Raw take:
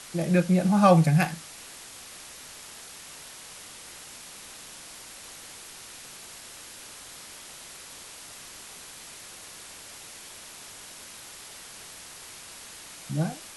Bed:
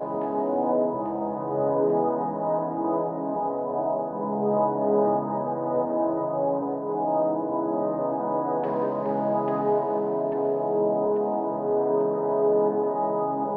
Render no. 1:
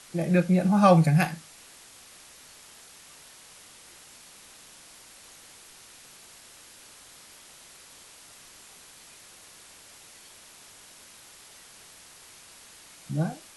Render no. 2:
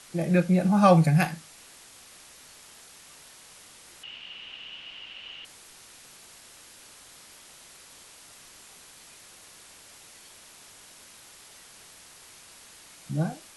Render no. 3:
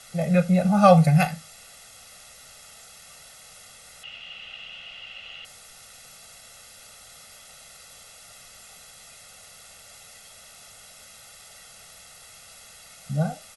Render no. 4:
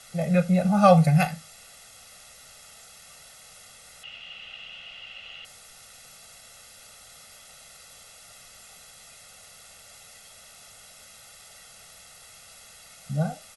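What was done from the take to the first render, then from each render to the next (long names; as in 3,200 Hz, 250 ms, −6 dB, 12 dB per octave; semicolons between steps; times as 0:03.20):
noise reduction from a noise print 6 dB
0:04.03–0:05.45: low-pass with resonance 2,900 Hz, resonance Q 15
comb filter 1.5 ms, depth 93%
level −1.5 dB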